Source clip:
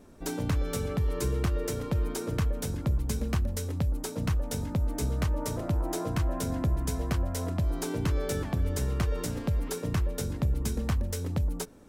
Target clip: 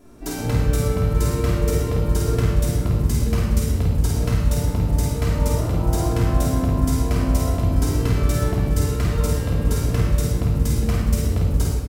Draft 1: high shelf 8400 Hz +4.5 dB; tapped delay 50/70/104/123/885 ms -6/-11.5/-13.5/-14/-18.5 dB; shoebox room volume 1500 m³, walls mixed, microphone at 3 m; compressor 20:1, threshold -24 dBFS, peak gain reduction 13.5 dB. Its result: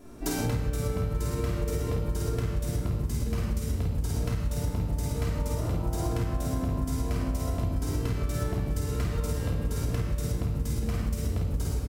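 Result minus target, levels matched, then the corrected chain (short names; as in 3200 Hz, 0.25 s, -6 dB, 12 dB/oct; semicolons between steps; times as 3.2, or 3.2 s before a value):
compressor: peak gain reduction +13.5 dB
high shelf 8400 Hz +4.5 dB; tapped delay 50/70/104/123/885 ms -6/-11.5/-13.5/-14/-18.5 dB; shoebox room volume 1500 m³, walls mixed, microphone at 3 m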